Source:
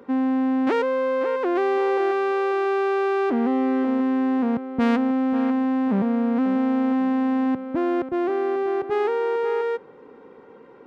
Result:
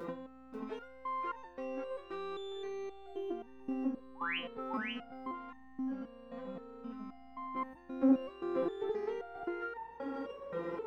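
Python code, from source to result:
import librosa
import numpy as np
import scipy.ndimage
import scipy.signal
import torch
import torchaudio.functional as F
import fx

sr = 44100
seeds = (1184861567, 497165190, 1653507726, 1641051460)

y = fx.peak_eq(x, sr, hz=2300.0, db=-13.0, octaves=2.7, at=(3.06, 3.71))
y = fx.over_compress(y, sr, threshold_db=-29.0, ratio=-0.5)
y = fx.spec_paint(y, sr, seeds[0], shape='rise', start_s=4.15, length_s=0.23, low_hz=760.0, high_hz=3300.0, level_db=-34.0)
y = fx.add_hum(y, sr, base_hz=60, snr_db=24)
y = y + 10.0 ** (-3.0 / 20.0) * np.pad(y, (int(538 * sr / 1000.0), 0))[:len(y)]
y = fx.resonator_held(y, sr, hz=3.8, low_hz=170.0, high_hz=900.0)
y = y * librosa.db_to_amplitude(9.5)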